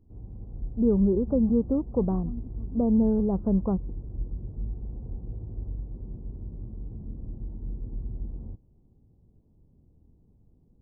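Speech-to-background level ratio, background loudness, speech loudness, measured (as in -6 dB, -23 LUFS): 13.0 dB, -38.5 LUFS, -25.5 LUFS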